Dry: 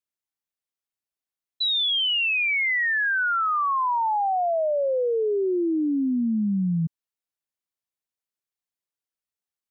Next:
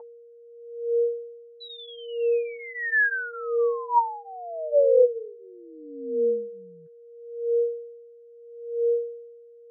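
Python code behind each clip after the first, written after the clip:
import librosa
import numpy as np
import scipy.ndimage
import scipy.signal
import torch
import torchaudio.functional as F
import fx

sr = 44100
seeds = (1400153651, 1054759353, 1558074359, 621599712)

y = x + 10.0 ** (-26.0 / 20.0) * np.sin(2.0 * np.pi * 470.0 * np.arange(len(x)) / sr)
y = fx.wah_lfo(y, sr, hz=0.76, low_hz=480.0, high_hz=1600.0, q=10.0)
y = fx.notch_comb(y, sr, f0_hz=200.0)
y = y * librosa.db_to_amplitude(9.0)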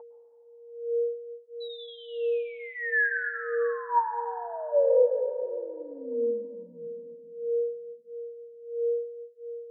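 y = fx.rev_plate(x, sr, seeds[0], rt60_s=3.0, hf_ratio=0.55, predelay_ms=100, drr_db=6.5)
y = y * librosa.db_to_amplitude(-3.5)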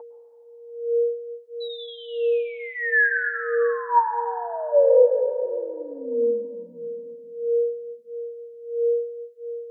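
y = scipy.signal.sosfilt(scipy.signal.butter(2, 200.0, 'highpass', fs=sr, output='sos'), x)
y = y * librosa.db_to_amplitude(6.0)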